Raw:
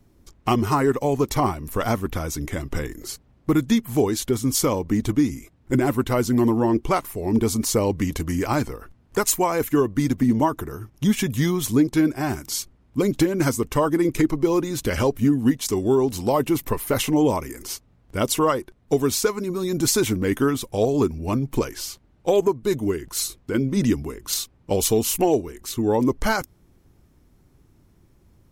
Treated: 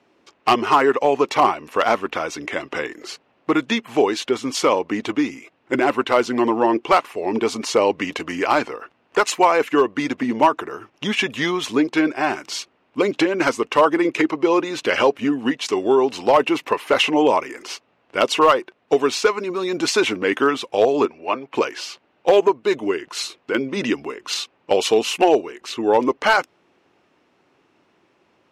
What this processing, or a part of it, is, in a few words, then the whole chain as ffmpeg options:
megaphone: -filter_complex "[0:a]highpass=490,lowpass=3500,equalizer=frequency=2700:width_type=o:width=0.28:gain=7,asoftclip=type=hard:threshold=-15dB,asettb=1/sr,asplit=3[link_01][link_02][link_03];[link_01]atrim=end=21.054[link_04];[link_02]atrim=start=21.05:end=21.55,asetpts=PTS-STARTPTS,afade=type=in:duration=0.004:curve=qsin,afade=type=out:start_time=0.496:duration=0.004:curve=qsin,acrossover=split=370 3900:gain=0.251 1 0.251[link_05][link_06][link_07];[link_05][link_06][link_07]amix=inputs=3:normalize=0[link_08];[link_03]atrim=start=21.546[link_09];[link_04][link_08]acrossfade=duration=0.004:curve1=hsin:curve2=qsin[link_10];[link_10][link_09]acrossfade=duration=0.004:curve1=qsin:curve2=hsin,volume=8.5dB"

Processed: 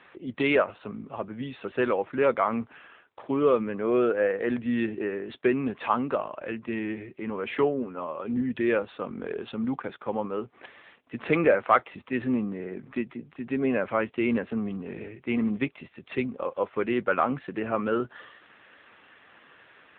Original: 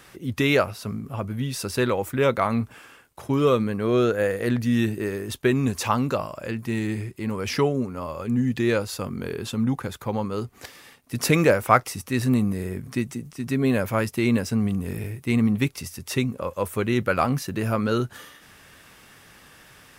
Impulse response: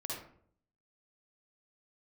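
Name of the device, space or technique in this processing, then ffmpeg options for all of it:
telephone: -af "highpass=280,lowpass=3400,asoftclip=type=tanh:threshold=-7.5dB" -ar 8000 -c:a libopencore_amrnb -b:a 7950

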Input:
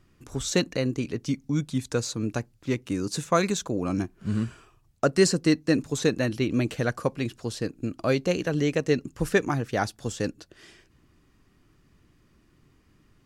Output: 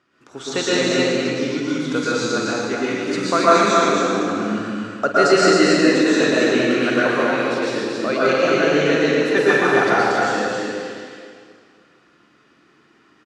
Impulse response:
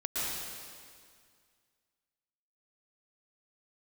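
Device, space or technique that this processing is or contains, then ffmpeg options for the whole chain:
station announcement: -filter_complex "[0:a]highpass=330,lowpass=5000,equalizer=frequency=1400:width_type=o:width=0.34:gain=6,aecho=1:1:46.65|271.1:0.282|0.631[link_01];[1:a]atrim=start_sample=2205[link_02];[link_01][link_02]afir=irnorm=-1:irlink=0,volume=3.5dB"

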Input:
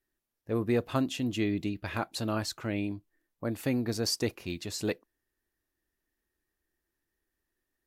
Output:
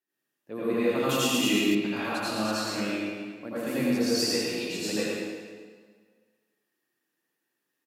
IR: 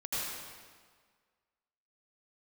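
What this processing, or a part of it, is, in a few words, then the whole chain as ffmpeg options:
PA in a hall: -filter_complex "[0:a]highpass=frequency=160:width=0.5412,highpass=frequency=160:width=1.3066,equalizer=frequency=2800:width_type=o:width=0.27:gain=6,aecho=1:1:110:0.596[link_01];[1:a]atrim=start_sample=2205[link_02];[link_01][link_02]afir=irnorm=-1:irlink=0,asettb=1/sr,asplit=3[link_03][link_04][link_05];[link_03]atrim=end=1.094[link_06];[link_04]atrim=start=1.09:end=1.75,asetpts=PTS-STARTPTS,afade=type=in:duration=0.004:curve=qsin,afade=type=out:start_time=0.656:duration=0.004:curve=qsin,aemphasis=mode=production:type=75kf[link_07];[link_05]atrim=start=1.746[link_08];[link_06][link_07]acrossfade=duration=0.004:curve1=hsin:curve2=qsin[link_09];[link_09][link_08]acrossfade=duration=0.004:curve1=qsin:curve2=hsin,volume=-1.5dB"

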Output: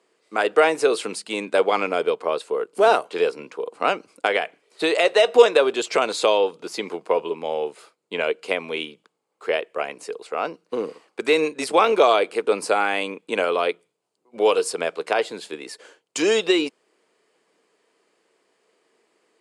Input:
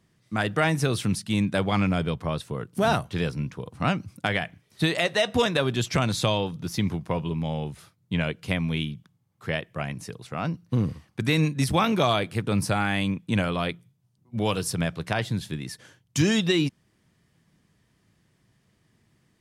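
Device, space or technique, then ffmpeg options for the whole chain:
phone speaker on a table: -af "highpass=frequency=370:width=0.5412,highpass=frequency=370:width=1.3066,equalizer=frequency=450:width_type=q:width=4:gain=8,equalizer=frequency=1800:width_type=q:width=4:gain=-6,equalizer=frequency=3500:width_type=q:width=4:gain=-6,equalizer=frequency=5800:width_type=q:width=4:gain=-9,lowpass=frequency=8700:width=0.5412,lowpass=frequency=8700:width=1.3066,volume=6.5dB"

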